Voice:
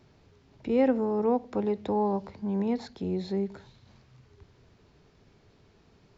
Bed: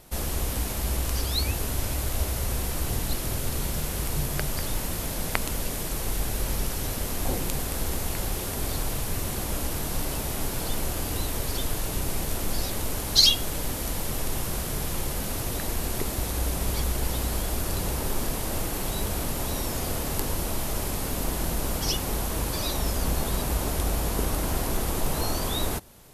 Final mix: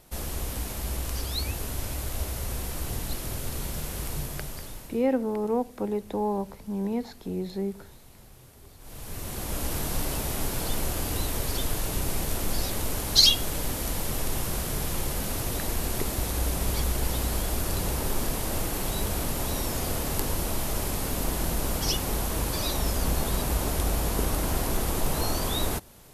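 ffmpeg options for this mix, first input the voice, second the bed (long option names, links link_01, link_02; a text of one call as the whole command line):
ffmpeg -i stem1.wav -i stem2.wav -filter_complex "[0:a]adelay=4250,volume=-1dB[link_01];[1:a]volume=19dB,afade=type=out:start_time=4.1:duration=0.96:silence=0.112202,afade=type=in:start_time=8.79:duration=0.96:silence=0.0707946[link_02];[link_01][link_02]amix=inputs=2:normalize=0" out.wav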